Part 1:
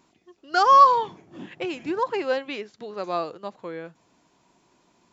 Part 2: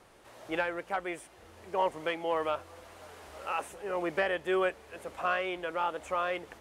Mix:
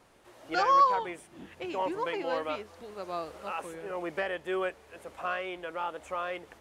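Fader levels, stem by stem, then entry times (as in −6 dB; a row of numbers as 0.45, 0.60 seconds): −8.5, −3.0 decibels; 0.00, 0.00 seconds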